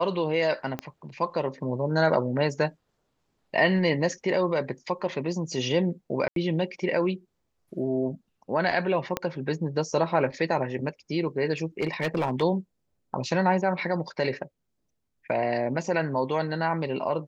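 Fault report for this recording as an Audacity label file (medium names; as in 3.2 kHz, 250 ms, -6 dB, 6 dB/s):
0.790000	0.790000	pop -17 dBFS
6.280000	6.360000	dropout 82 ms
9.170000	9.170000	pop -11 dBFS
11.800000	12.430000	clipped -21 dBFS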